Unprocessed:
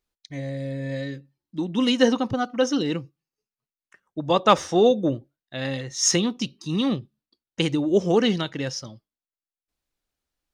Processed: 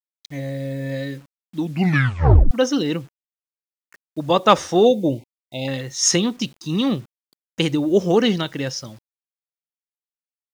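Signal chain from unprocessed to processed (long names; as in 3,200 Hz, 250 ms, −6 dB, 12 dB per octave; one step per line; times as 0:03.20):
bit reduction 9 bits
0:01.59: tape stop 0.92 s
0:04.85–0:05.68: linear-phase brick-wall band-stop 990–2,000 Hz
level +3 dB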